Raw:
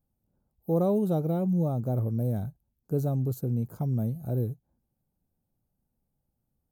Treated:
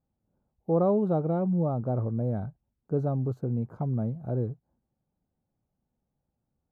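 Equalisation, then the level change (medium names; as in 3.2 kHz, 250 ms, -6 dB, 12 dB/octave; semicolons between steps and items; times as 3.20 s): tilt EQ -4.5 dB/octave; dynamic bell 1.2 kHz, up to +4 dB, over -43 dBFS, Q 1.5; band-pass filter 1.4 kHz, Q 0.7; +3.0 dB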